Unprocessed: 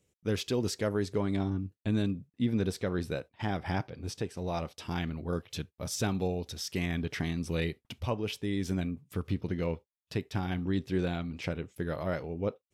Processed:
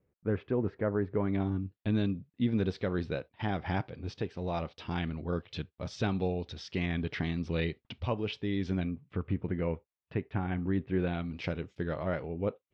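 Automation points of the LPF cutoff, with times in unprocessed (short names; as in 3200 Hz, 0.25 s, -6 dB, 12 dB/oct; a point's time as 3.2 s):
LPF 24 dB/oct
1.07 s 1800 Hz
1.62 s 4200 Hz
8.7 s 4200 Hz
9.32 s 2400 Hz
10.89 s 2400 Hz
11.61 s 6300 Hz
12.01 s 3300 Hz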